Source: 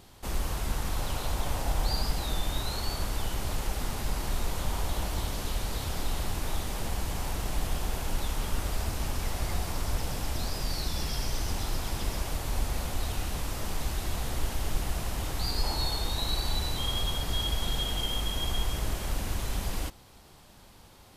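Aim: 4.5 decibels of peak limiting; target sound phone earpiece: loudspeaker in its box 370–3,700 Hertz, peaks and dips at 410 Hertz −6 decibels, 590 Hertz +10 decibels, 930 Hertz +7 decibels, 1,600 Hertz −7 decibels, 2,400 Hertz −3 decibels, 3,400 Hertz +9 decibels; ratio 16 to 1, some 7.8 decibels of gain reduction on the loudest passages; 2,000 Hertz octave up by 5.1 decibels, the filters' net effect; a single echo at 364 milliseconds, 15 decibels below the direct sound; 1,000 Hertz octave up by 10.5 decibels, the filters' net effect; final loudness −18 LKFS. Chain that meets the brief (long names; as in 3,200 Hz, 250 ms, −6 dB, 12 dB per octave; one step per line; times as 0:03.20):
parametric band 1,000 Hz +5.5 dB
parametric band 2,000 Hz +8.5 dB
downward compressor 16 to 1, threshold −29 dBFS
brickwall limiter −25.5 dBFS
loudspeaker in its box 370–3,700 Hz, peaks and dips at 410 Hz −6 dB, 590 Hz +10 dB, 930 Hz +7 dB, 1,600 Hz −7 dB, 2,400 Hz −3 dB, 3,400 Hz +9 dB
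single-tap delay 364 ms −15 dB
level +17.5 dB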